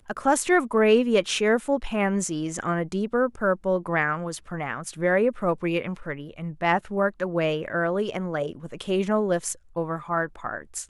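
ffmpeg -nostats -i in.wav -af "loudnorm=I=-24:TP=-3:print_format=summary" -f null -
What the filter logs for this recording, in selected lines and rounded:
Input Integrated:    -25.6 LUFS
Input True Peak:      -8.4 dBTP
Input LRA:             5.0 LU
Input Threshold:     -35.7 LUFS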